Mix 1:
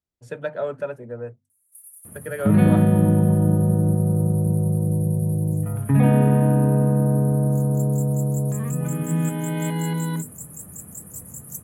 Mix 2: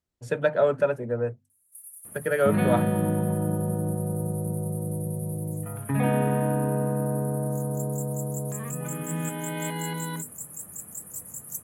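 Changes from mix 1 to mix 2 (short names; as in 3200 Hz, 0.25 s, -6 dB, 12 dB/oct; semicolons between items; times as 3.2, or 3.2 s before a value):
speech +5.5 dB; second sound: add low shelf 330 Hz -11.5 dB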